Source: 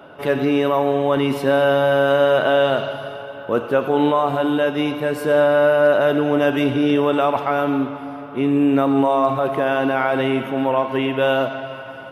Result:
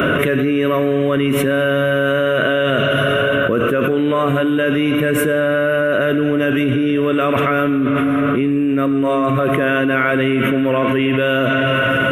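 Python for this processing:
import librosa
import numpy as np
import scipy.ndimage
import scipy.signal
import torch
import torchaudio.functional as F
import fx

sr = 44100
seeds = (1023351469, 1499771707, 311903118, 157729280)

y = fx.fixed_phaser(x, sr, hz=2000.0, stages=4)
y = fx.env_flatten(y, sr, amount_pct=100)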